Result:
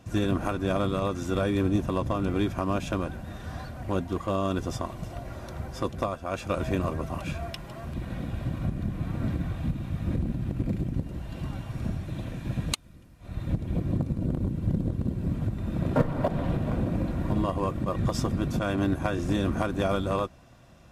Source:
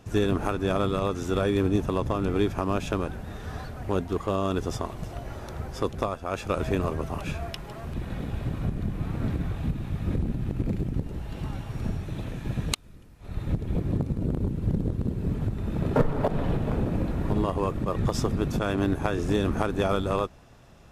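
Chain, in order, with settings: comb of notches 430 Hz

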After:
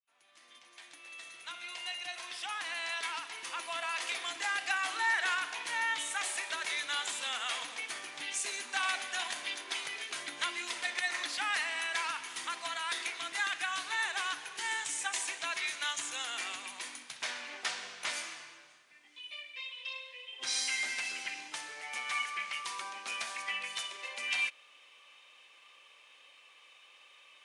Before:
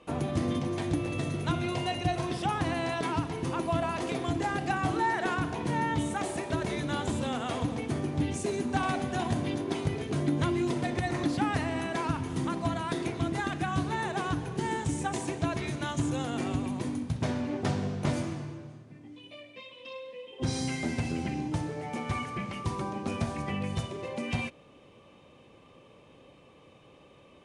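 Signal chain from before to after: fade-in on the opening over 4.45 s; Chebyshev high-pass 2 kHz, order 2; trim +6.5 dB

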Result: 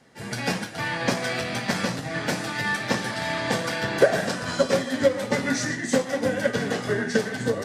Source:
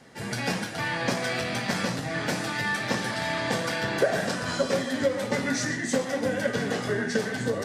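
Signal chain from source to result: upward expansion 1.5:1, over -40 dBFS; trim +6.5 dB

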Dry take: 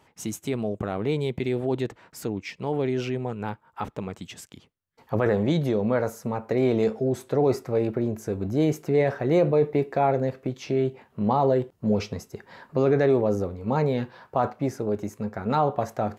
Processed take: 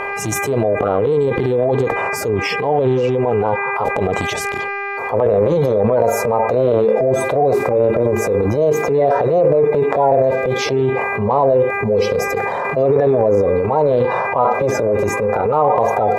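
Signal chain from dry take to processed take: coarse spectral quantiser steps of 30 dB; high-order bell 710 Hz +14 dB; mains buzz 400 Hz, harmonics 6, -49 dBFS 0 dB/octave; transient shaper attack -5 dB, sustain +12 dB; harmonic-percussive split percussive -10 dB; level flattener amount 70%; trim -5 dB

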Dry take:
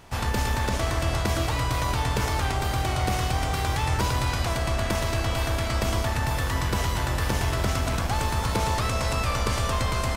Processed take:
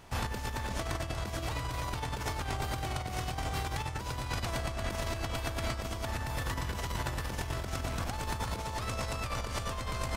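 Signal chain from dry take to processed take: compressor with a negative ratio -27 dBFS, ratio -0.5; trim -7 dB

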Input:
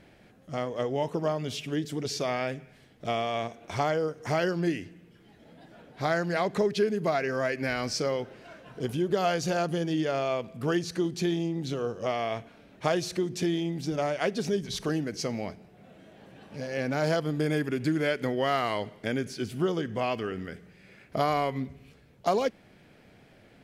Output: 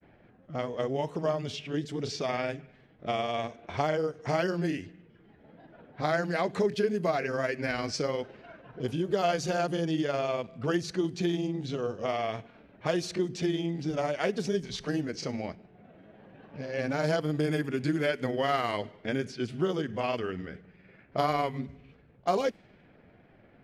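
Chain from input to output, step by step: level-controlled noise filter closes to 1.9 kHz, open at -24 dBFS; granulator 100 ms, grains 20 per s, spray 16 ms, pitch spread up and down by 0 st

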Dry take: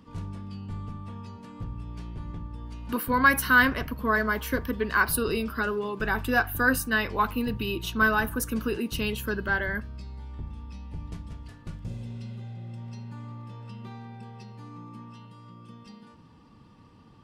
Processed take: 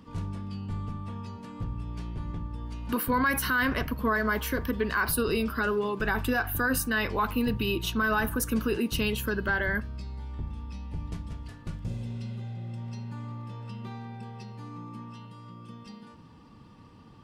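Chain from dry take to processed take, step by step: peak limiter -19.5 dBFS, peak gain reduction 11.5 dB; trim +2 dB

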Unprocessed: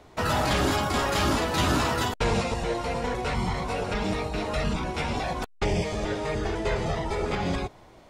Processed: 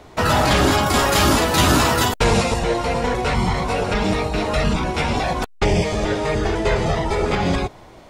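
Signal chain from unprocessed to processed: 0.86–2.59 s: treble shelf 8.5 kHz +9.5 dB; trim +8 dB

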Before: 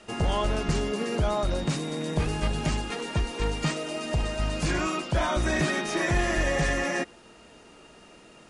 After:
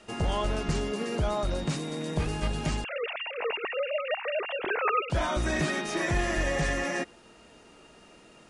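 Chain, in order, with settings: 2.84–5.10 s: formants replaced by sine waves; trim -2.5 dB

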